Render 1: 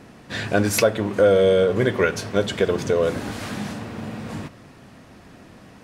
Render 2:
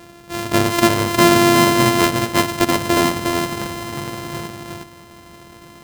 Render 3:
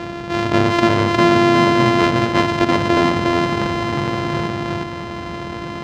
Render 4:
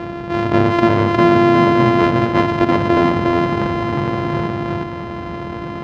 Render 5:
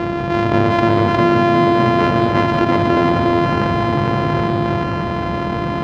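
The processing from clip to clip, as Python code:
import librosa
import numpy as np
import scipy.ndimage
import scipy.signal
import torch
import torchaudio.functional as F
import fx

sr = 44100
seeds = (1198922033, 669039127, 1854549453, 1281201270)

y1 = np.r_[np.sort(x[:len(x) // 128 * 128].reshape(-1, 128), axis=1).ravel(), x[len(x) // 128 * 128:]]
y1 = fx.low_shelf(y1, sr, hz=63.0, db=-6.0)
y1 = y1 + 10.0 ** (-3.5 / 20.0) * np.pad(y1, (int(358 * sr / 1000.0), 0))[:len(y1)]
y1 = y1 * 10.0 ** (3.5 / 20.0)
y2 = scipy.signal.sosfilt(scipy.signal.butter(2, 50.0, 'highpass', fs=sr, output='sos'), y1)
y2 = fx.air_absorb(y2, sr, metres=170.0)
y2 = fx.env_flatten(y2, sr, amount_pct=50)
y2 = y2 * 10.0 ** (-1.0 / 20.0)
y3 = fx.lowpass(y2, sr, hz=1600.0, slope=6)
y3 = y3 * 10.0 ** (2.0 / 20.0)
y4 = y3 + 10.0 ** (-8.0 / 20.0) * np.pad(y3, (int(187 * sr / 1000.0), 0))[:len(y3)]
y4 = fx.env_flatten(y4, sr, amount_pct=50)
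y4 = y4 * 10.0 ** (-2.0 / 20.0)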